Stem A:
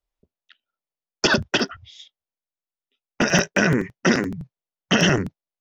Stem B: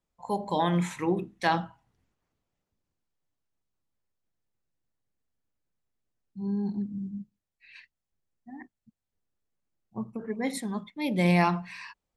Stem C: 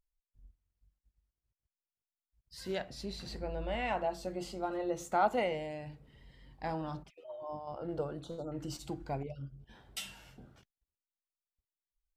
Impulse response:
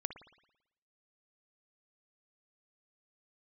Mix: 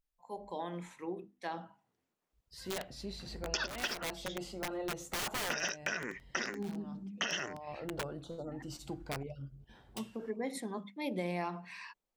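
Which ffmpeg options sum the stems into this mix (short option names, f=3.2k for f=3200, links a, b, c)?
-filter_complex "[0:a]highpass=f=1.2k:p=1,adelay=2300,volume=-4.5dB[a];[1:a]adynamicequalizer=threshold=0.0126:dfrequency=470:dqfactor=0.83:tfrequency=470:tqfactor=0.83:attack=5:release=100:ratio=0.375:range=3:mode=boostabove:tftype=bell,highpass=190,bandreject=f=50:t=h:w=6,bandreject=f=100:t=h:w=6,bandreject=f=150:t=h:w=6,bandreject=f=200:t=h:w=6,bandreject=f=250:t=h:w=6,bandreject=f=300:t=h:w=6,volume=-5.5dB,afade=t=in:st=1.55:d=0.32:silence=0.298538,asplit=2[b][c];[2:a]aeval=exprs='(mod(26.6*val(0)+1,2)-1)/26.6':c=same,volume=-1.5dB[d];[c]apad=whole_len=536586[e];[d][e]sidechaincompress=threshold=-51dB:ratio=5:attack=50:release=484[f];[a][b][f]amix=inputs=3:normalize=0,acompressor=threshold=-33dB:ratio=6"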